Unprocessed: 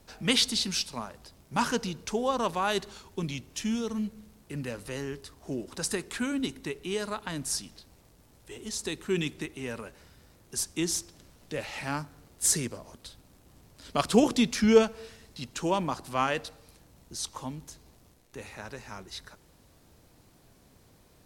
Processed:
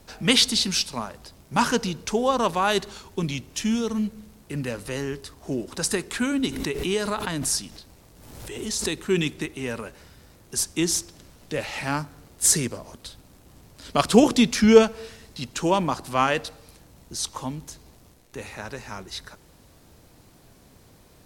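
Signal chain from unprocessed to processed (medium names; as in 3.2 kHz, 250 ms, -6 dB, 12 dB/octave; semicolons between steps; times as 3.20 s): 6.47–9.07 s: swell ahead of each attack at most 43 dB/s; trim +6 dB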